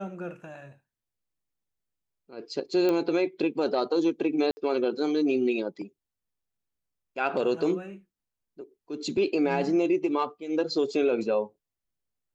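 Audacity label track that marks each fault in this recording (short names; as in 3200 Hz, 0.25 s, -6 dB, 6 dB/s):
2.890000	2.890000	pop -15 dBFS
4.510000	4.570000	gap 60 ms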